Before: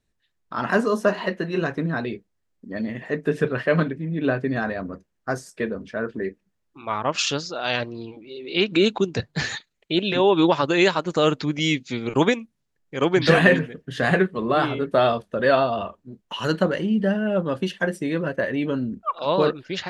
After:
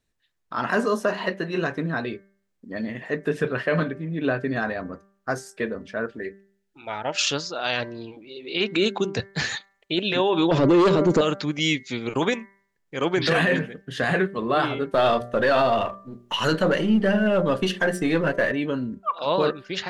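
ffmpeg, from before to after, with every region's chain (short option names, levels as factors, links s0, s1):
-filter_complex "[0:a]asettb=1/sr,asplit=3[s0][s1][s2];[s0]atrim=end=6.064[s3];[s1]atrim=start=6.06:end=7.2,asetpts=PTS-STARTPTS,afade=t=in:d=0.004:c=qsin,afade=t=out:st=1.136:d=0.004:c=qsin,asuperstop=centerf=1100:order=4:qfactor=3.2,equalizer=f=200:w=0.42:g=-4.5[s4];[s2]atrim=start=7.196[s5];[s3][s4]acrossfade=d=0.004:c1=hsin:c2=qsin[s6];[s6][s5]acrossfade=d=0.004:c1=qsin:c2=hsin,asettb=1/sr,asplit=3[s7][s8][s9];[s7]atrim=end=10.514[s10];[s8]atrim=start=10.51:end=11.21,asetpts=PTS-STARTPTS,afade=t=in:d=0.004:c=qsin,afade=t=out:st=0.696:d=0.004:c=qsin,highpass=51,lowshelf=f=640:t=q:w=1.5:g=14,acontrast=49[s11];[s9]atrim=start=11.206[s12];[s10][s11]acrossfade=d=0.004:c1=hsin:c2=qsin[s13];[s13][s12]acrossfade=d=0.004:c1=qsin:c2=hsin,asettb=1/sr,asplit=3[s14][s15][s16];[s14]atrim=end=14.944[s17];[s15]atrim=start=14.94:end=18.52,asetpts=PTS-STARTPTS,afade=t=in:d=0.004:c=qsin,afade=t=out:st=3.576:d=0.004:c=qsin,aeval=exprs='if(lt(val(0),0),0.708*val(0),val(0))':c=same,bandreject=f=60.05:t=h:w=4,bandreject=f=120.1:t=h:w=4,bandreject=f=180.15:t=h:w=4,bandreject=f=240.2:t=h:w=4,bandreject=f=300.25:t=h:w=4,bandreject=f=360.3:t=h:w=4,bandreject=f=420.35:t=h:w=4,bandreject=f=480.4:t=h:w=4,bandreject=f=540.45:t=h:w=4,bandreject=f=600.5:t=h:w=4,bandreject=f=660.55:t=h:w=4,bandreject=f=720.6:t=h:w=4,acontrast=57[s18];[s16]atrim=start=18.516[s19];[s17][s18]acrossfade=d=0.004:c1=hsin:c2=qsin[s20];[s20][s19]acrossfade=d=0.004:c1=qsin:c2=hsin,lowshelf=f=450:g=-4,bandreject=f=196.5:t=h:w=4,bandreject=f=393:t=h:w=4,bandreject=f=589.5:t=h:w=4,bandreject=f=786:t=h:w=4,bandreject=f=982.5:t=h:w=4,bandreject=f=1179:t=h:w=4,bandreject=f=1375.5:t=h:w=4,bandreject=f=1572:t=h:w=4,bandreject=f=1768.5:t=h:w=4,bandreject=f=1965:t=h:w=4,bandreject=f=2161.5:t=h:w=4,alimiter=limit=0.224:level=0:latency=1:release=11,volume=1.12"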